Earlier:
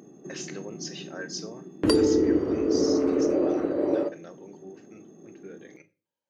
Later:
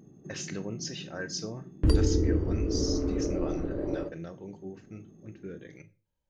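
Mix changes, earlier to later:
background -10.0 dB; master: remove high-pass 310 Hz 12 dB/octave

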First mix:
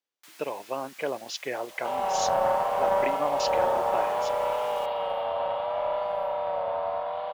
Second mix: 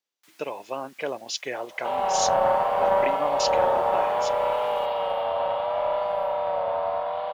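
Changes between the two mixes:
speech: add treble shelf 3.9 kHz +8 dB; first sound -7.0 dB; second sound +3.0 dB

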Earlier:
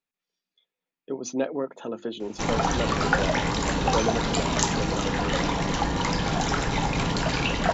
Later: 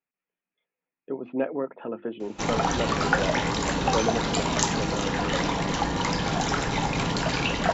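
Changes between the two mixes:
speech: add steep low-pass 2.7 kHz 48 dB/octave; master: add bass shelf 63 Hz -7.5 dB

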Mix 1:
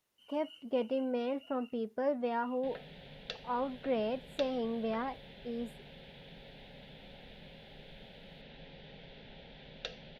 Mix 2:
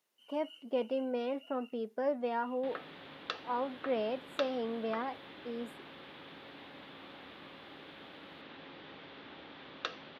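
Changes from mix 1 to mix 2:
background: remove static phaser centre 310 Hz, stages 6; master: add high-pass 230 Hz 12 dB/octave

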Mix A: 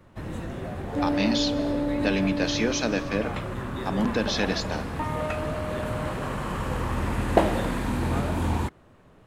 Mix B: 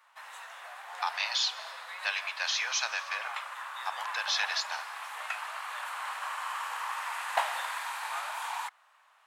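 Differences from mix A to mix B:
second sound: muted; master: add steep high-pass 840 Hz 36 dB/octave

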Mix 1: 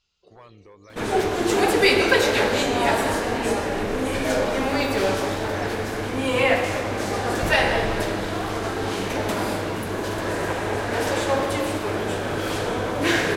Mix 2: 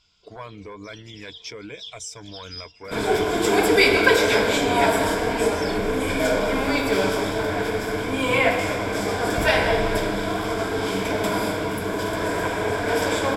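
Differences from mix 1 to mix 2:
speech +9.5 dB; second sound: entry +1.95 s; master: add rippled EQ curve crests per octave 1.7, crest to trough 9 dB

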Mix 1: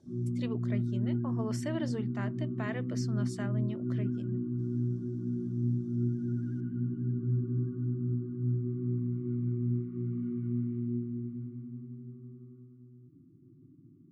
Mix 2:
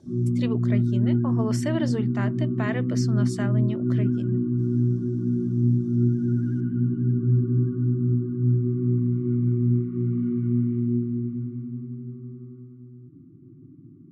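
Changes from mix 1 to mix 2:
speech +8.0 dB; background +9.5 dB

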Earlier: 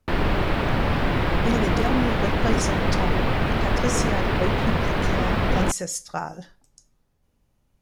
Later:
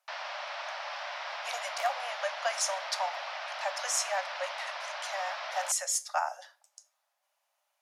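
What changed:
background: add four-pole ladder low-pass 6.2 kHz, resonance 65%; master: add steep high-pass 580 Hz 96 dB/octave

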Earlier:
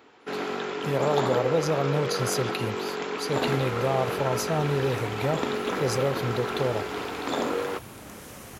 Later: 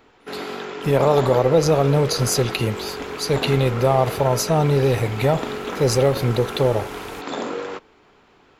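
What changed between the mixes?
speech +8.5 dB; second sound: entry -1.75 s; master: remove high-pass 76 Hz

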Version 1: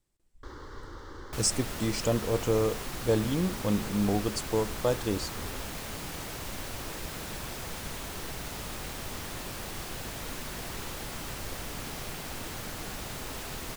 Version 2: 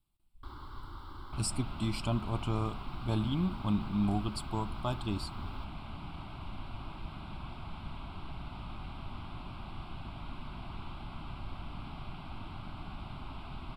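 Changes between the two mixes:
second sound: add tape spacing loss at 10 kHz 29 dB; master: add static phaser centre 1.8 kHz, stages 6

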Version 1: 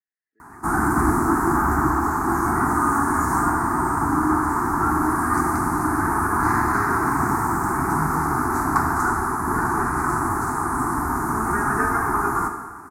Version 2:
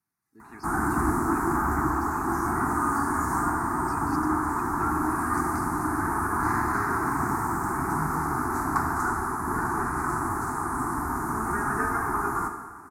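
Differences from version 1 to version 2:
speech: remove two resonant band-passes 980 Hz, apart 1.8 oct; background -5.5 dB

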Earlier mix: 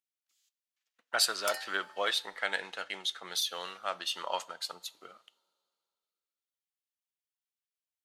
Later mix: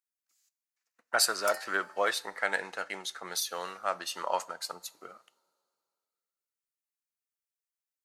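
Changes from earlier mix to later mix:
speech +4.5 dB; master: add peaking EQ 3.3 kHz -13.5 dB 0.67 oct

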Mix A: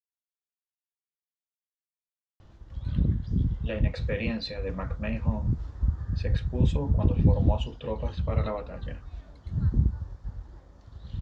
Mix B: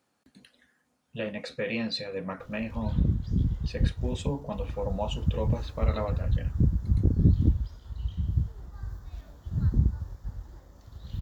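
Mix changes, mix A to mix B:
speech: entry -2.50 s; master: remove distance through air 100 m

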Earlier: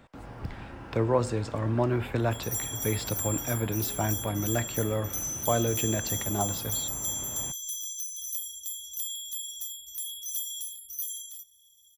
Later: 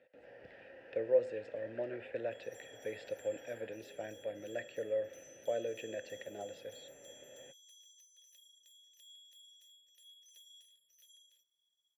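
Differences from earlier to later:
first sound +6.5 dB; master: add vowel filter e

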